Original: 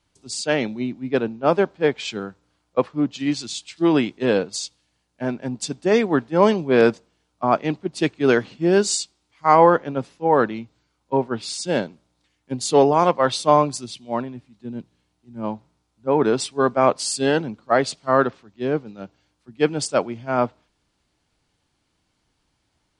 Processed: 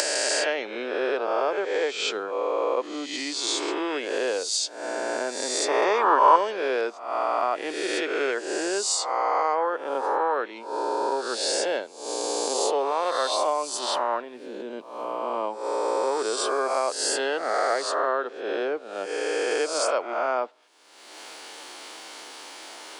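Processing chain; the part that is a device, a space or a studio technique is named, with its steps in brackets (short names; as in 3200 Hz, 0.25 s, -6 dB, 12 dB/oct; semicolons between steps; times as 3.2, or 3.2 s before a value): spectral swells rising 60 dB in 1.35 s; upward and downward compression (upward compressor, threshold -27 dBFS; compressor 6:1, threshold -29 dBFS, peak gain reduction 20.5 dB); HPF 390 Hz 24 dB/oct; 5.68–6.36 bell 980 Hz +14 dB 0.87 oct; gain +7 dB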